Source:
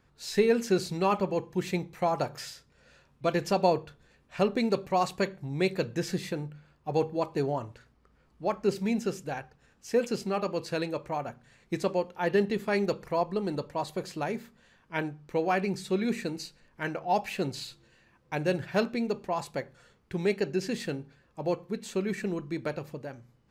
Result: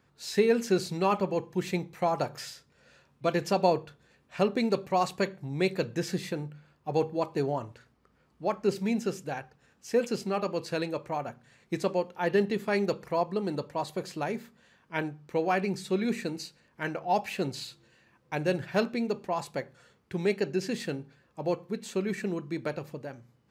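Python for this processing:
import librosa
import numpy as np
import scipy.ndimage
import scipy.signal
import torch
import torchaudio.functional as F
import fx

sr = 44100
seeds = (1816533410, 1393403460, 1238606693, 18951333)

y = scipy.signal.sosfilt(scipy.signal.butter(2, 86.0, 'highpass', fs=sr, output='sos'), x)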